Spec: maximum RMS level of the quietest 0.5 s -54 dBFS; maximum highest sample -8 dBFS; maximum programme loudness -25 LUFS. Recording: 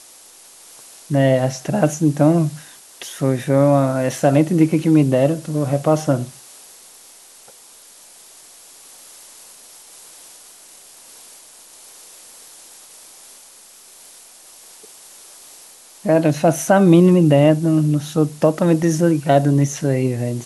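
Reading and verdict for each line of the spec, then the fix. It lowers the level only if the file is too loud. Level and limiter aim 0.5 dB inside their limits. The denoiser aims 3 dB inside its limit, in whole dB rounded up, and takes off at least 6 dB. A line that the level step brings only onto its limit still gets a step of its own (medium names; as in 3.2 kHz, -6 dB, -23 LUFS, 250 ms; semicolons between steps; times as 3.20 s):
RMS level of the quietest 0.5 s -45 dBFS: fail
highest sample -2.0 dBFS: fail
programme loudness -16.5 LUFS: fail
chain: noise reduction 6 dB, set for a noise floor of -45 dBFS; trim -9 dB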